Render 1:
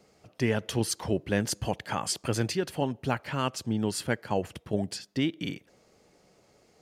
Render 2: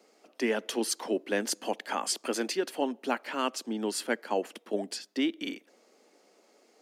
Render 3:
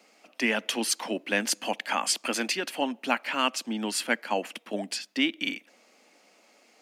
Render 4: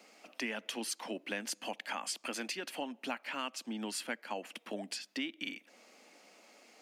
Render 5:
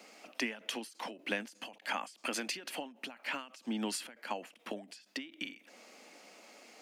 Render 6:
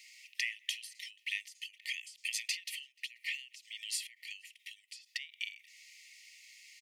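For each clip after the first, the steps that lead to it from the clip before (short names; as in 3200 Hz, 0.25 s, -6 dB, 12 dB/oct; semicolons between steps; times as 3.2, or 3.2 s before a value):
steep high-pass 230 Hz 48 dB/oct
fifteen-band EQ 100 Hz +7 dB, 400 Hz -10 dB, 2500 Hz +7 dB; gain +4 dB
compressor 2.5:1, threshold -41 dBFS, peak gain reduction 14.5 dB
ending taper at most 140 dB/s; gain +4 dB
brick-wall FIR high-pass 1800 Hz; outdoor echo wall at 83 m, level -27 dB; gain +2.5 dB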